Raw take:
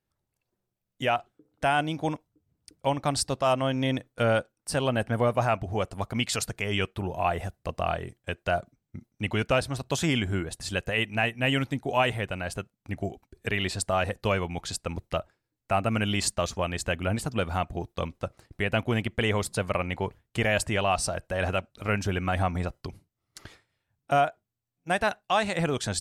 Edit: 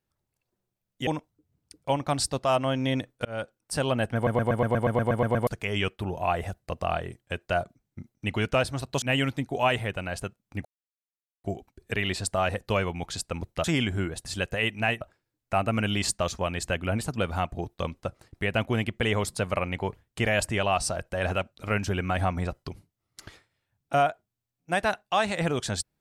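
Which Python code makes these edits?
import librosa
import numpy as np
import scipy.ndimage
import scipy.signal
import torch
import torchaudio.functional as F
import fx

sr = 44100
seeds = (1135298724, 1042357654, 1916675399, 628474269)

y = fx.edit(x, sr, fx.cut(start_s=1.07, length_s=0.97),
    fx.fade_in_span(start_s=4.22, length_s=0.33),
    fx.stutter_over(start_s=5.12, slice_s=0.12, count=11),
    fx.move(start_s=9.99, length_s=1.37, to_s=15.19),
    fx.insert_silence(at_s=12.99, length_s=0.79), tone=tone)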